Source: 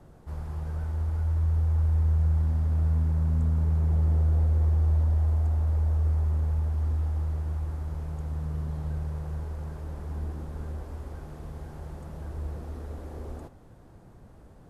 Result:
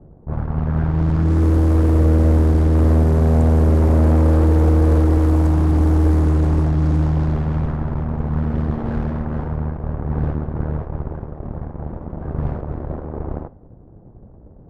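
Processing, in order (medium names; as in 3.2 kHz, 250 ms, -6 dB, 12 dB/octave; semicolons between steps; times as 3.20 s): level-controlled noise filter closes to 480 Hz, open at -21 dBFS; Chebyshev shaper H 8 -9 dB, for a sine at -15.5 dBFS; trim +8 dB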